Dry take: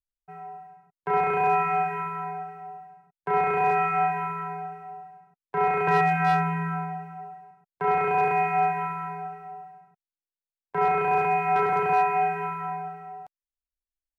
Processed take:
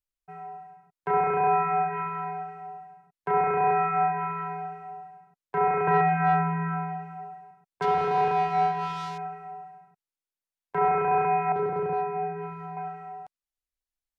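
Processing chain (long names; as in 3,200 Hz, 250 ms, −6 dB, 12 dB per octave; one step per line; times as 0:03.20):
0:07.82–0:09.18: gap after every zero crossing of 0.13 ms
treble cut that deepens with the level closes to 1,800 Hz, closed at −23 dBFS
0:11.52–0:12.77: flat-topped bell 1,500 Hz −9.5 dB 2.3 octaves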